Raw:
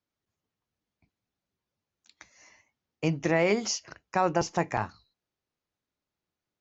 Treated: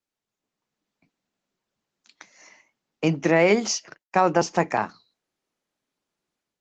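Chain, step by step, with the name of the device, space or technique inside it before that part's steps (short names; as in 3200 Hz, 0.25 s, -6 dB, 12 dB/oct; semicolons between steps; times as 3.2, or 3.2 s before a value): 3.14–4.53 gate -44 dBFS, range -30 dB; video call (HPF 160 Hz 24 dB/oct; AGC gain up to 8.5 dB; gain -1.5 dB; Opus 16 kbps 48000 Hz)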